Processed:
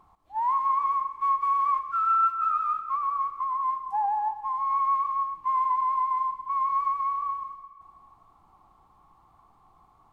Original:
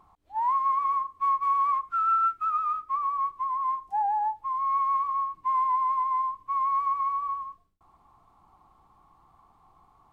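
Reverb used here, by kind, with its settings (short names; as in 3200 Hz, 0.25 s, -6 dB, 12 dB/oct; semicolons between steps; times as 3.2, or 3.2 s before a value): digital reverb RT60 1.9 s, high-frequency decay 0.95×, pre-delay 35 ms, DRR 10 dB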